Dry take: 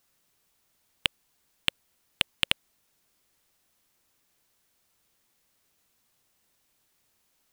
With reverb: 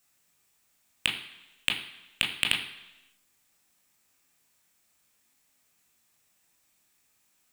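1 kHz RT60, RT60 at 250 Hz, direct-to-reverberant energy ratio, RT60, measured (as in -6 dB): 1.0 s, 0.90 s, 0.5 dB, 1.0 s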